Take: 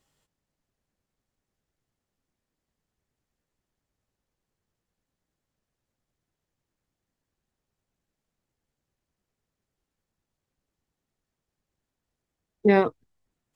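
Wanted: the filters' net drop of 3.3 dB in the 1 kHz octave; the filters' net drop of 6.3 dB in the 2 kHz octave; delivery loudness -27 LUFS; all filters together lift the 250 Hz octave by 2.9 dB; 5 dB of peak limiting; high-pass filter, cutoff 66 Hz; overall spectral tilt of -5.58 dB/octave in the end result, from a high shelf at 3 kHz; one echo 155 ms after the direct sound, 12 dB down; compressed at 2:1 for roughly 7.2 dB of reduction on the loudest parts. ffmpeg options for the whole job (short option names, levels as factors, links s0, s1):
-af "highpass=66,equalizer=f=250:t=o:g=4.5,equalizer=f=1000:t=o:g=-4,equalizer=f=2000:t=o:g=-8.5,highshelf=f=3000:g=6.5,acompressor=threshold=0.0562:ratio=2,alimiter=limit=0.119:level=0:latency=1,aecho=1:1:155:0.251,volume=1.58"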